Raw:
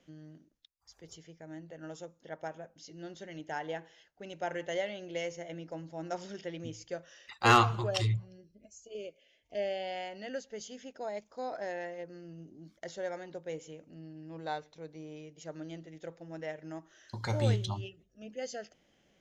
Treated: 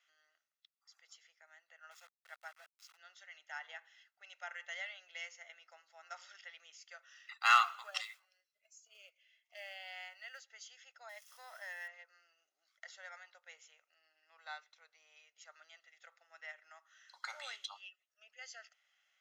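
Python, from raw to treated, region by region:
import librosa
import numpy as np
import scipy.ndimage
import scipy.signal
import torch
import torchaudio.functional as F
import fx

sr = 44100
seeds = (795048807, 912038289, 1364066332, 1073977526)

y = fx.chain(x, sr, fx.highpass(hz=240.0, slope=12),
    fx.sample_gate(floor_db=-49.5), at=(1.91, 2.97))
y = fx.chain(y, sr, fx.peak_eq(hz=350.0, db=-7.5, octaves=0.23),
    fx.quant_float(bits=4), at=(7.12, 10.5))
y = fx.chain(y, sr, fx.crossing_spikes(level_db=-44.0),
    fx.ripple_eq(per_octave=1.2, db=7), at=(11.09, 11.88))
y = scipy.signal.sosfilt(scipy.signal.butter(4, 1200.0, 'highpass', fs=sr, output='sos'), y)
y = fx.high_shelf(y, sr, hz=3200.0, db=-9.0)
y = y + 0.47 * np.pad(y, (int(1.5 * sr / 1000.0), 0))[:len(y)]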